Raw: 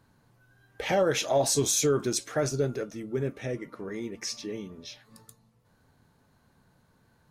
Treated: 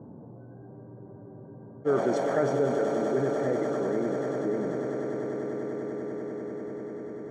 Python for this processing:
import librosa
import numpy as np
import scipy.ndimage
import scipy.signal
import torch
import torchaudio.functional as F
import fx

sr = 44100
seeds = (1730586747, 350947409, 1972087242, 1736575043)

p1 = fx.env_lowpass(x, sr, base_hz=640.0, full_db=-23.0)
p2 = scipy.signal.sosfilt(scipy.signal.butter(2, 190.0, 'highpass', fs=sr, output='sos'), p1)
p3 = fx.env_lowpass(p2, sr, base_hz=670.0, full_db=-23.0)
p4 = scipy.signal.savgol_filter(p3, 41, 4, mode='constant')
p5 = p4 + fx.echo_swell(p4, sr, ms=98, loudest=8, wet_db=-16.0, dry=0)
p6 = fx.spec_freeze(p5, sr, seeds[0], at_s=0.73, hold_s=1.15)
y = fx.env_flatten(p6, sr, amount_pct=50)